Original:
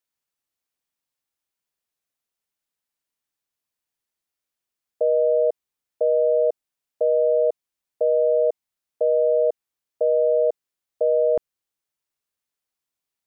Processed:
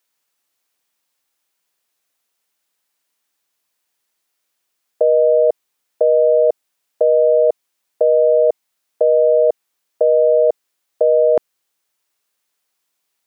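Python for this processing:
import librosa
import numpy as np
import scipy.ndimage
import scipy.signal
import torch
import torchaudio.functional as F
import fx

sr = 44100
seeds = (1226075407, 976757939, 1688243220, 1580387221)

p1 = fx.highpass(x, sr, hz=340.0, slope=6)
p2 = fx.over_compress(p1, sr, threshold_db=-24.0, ratio=-0.5)
p3 = p1 + (p2 * librosa.db_to_amplitude(-2.5))
y = p3 * librosa.db_to_amplitude(5.0)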